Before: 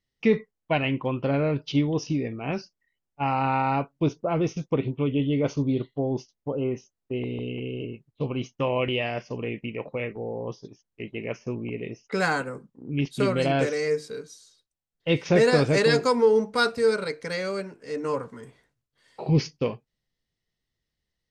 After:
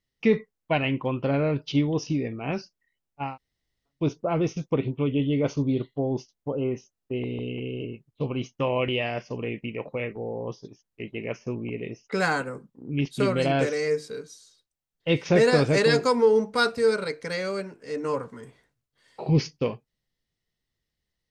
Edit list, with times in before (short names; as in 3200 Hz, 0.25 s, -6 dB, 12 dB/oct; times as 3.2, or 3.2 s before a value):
3.26–3.97 room tone, crossfade 0.24 s